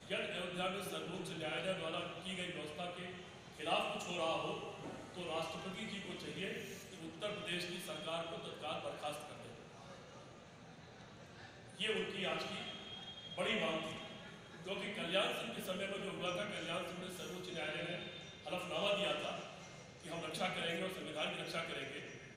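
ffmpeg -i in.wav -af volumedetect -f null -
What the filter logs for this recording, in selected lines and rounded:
mean_volume: -43.0 dB
max_volume: -21.2 dB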